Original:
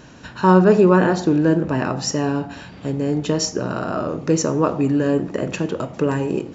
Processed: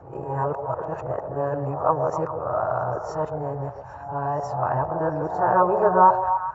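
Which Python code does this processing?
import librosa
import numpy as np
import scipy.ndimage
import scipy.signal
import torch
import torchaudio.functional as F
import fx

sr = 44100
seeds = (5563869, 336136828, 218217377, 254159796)

y = np.flip(x).copy()
y = fx.curve_eq(y, sr, hz=(130.0, 210.0, 330.0, 800.0, 1300.0, 3200.0, 6500.0), db=(0, -21, -14, 9, 0, -28, -23))
y = fx.echo_stepped(y, sr, ms=134, hz=520.0, octaves=0.7, feedback_pct=70, wet_db=-5.0)
y = y * 10.0 ** (-2.0 / 20.0)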